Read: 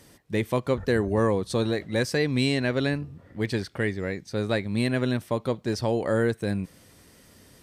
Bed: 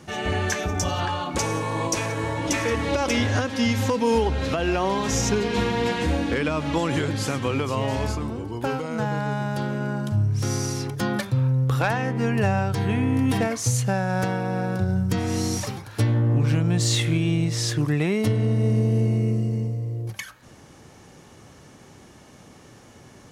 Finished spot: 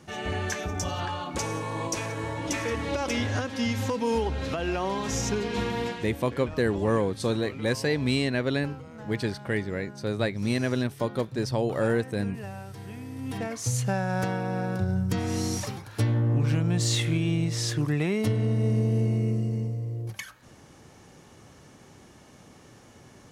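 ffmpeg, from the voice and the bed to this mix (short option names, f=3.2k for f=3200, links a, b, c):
-filter_complex "[0:a]adelay=5700,volume=-1.5dB[a];[1:a]volume=8dB,afade=t=out:st=5.8:d=0.28:silence=0.266073,afade=t=in:st=13.15:d=0.7:silence=0.211349[b];[a][b]amix=inputs=2:normalize=0"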